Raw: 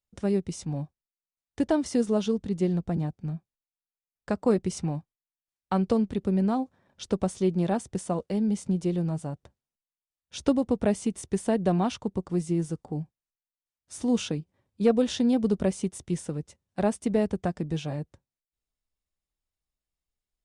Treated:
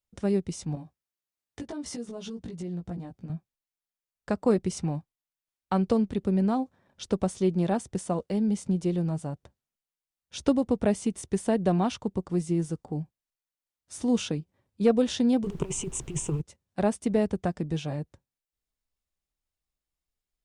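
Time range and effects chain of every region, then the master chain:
0.75–3.3 HPF 50 Hz + compressor 10:1, threshold -35 dBFS + doubler 17 ms -3 dB
15.43–16.4 ripple EQ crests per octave 0.7, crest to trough 16 dB + negative-ratio compressor -28 dBFS, ratio -0.5 + added noise brown -44 dBFS
whole clip: dry

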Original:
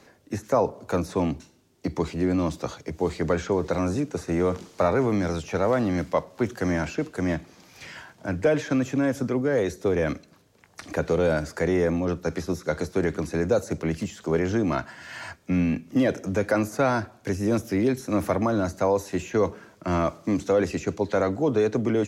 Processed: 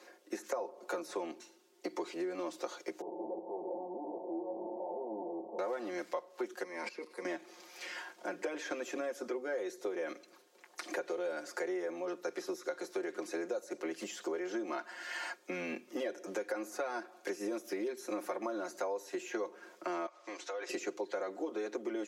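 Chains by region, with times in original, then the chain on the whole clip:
3.01–5.59 infinite clipping + steep low-pass 920 Hz 96 dB/oct + resonator 110 Hz, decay 0.75 s, mix 70%
6.63–7.25 ripple EQ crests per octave 0.91, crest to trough 11 dB + level quantiser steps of 17 dB
20.06–20.69 BPF 730–5800 Hz + compressor 4:1, threshold -36 dBFS
whole clip: steep high-pass 290 Hz 36 dB/oct; comb 5.6 ms, depth 85%; compressor 6:1, threshold -31 dBFS; gain -4 dB

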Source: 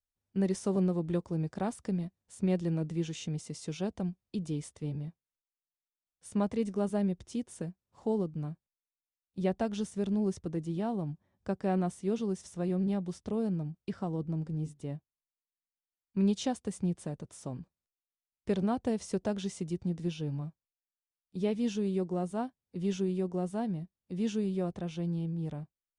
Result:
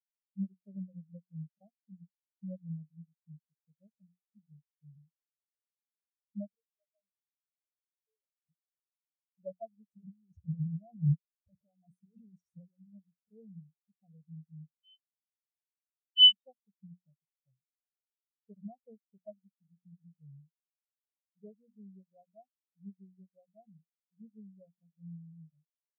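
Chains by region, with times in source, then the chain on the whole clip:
6.55–8.49 HPF 150 Hz + differentiator + sample leveller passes 5
9.9–12.95 negative-ratio compressor -37 dBFS, ratio -0.5 + sample leveller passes 3
14.78–16.32 inverted band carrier 3200 Hz + air absorption 56 m
whole clip: notches 60/120/180/240 Hz; comb 1.6 ms, depth 88%; spectral expander 4:1; gain +5.5 dB

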